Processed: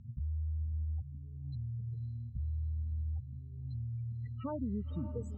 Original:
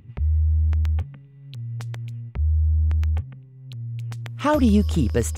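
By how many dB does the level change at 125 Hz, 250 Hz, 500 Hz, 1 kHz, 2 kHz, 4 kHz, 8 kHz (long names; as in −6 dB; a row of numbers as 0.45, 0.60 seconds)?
−14.0 dB, −18.0 dB, −19.0 dB, −22.0 dB, below −30 dB, below −25 dB, below −30 dB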